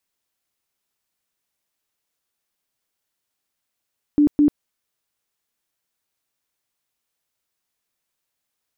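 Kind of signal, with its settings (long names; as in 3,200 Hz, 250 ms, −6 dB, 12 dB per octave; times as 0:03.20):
tone bursts 294 Hz, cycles 27, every 0.21 s, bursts 2, −11 dBFS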